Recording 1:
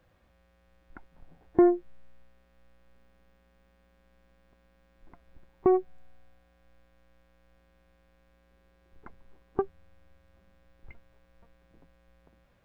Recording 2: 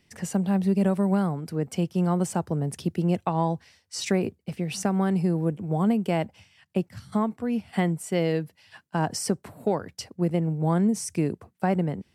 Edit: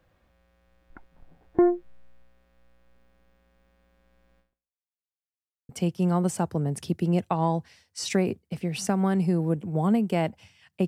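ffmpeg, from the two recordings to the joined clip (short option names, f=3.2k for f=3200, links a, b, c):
-filter_complex "[0:a]apad=whole_dur=10.87,atrim=end=10.87,asplit=2[a][b];[a]atrim=end=5.05,asetpts=PTS-STARTPTS,afade=t=out:st=4.39:d=0.66:c=exp[c];[b]atrim=start=5.05:end=5.69,asetpts=PTS-STARTPTS,volume=0[d];[1:a]atrim=start=1.65:end=6.83,asetpts=PTS-STARTPTS,afade=t=in:d=0.004:c=hsin[e];[c][d][e]concat=n=3:v=0:a=1"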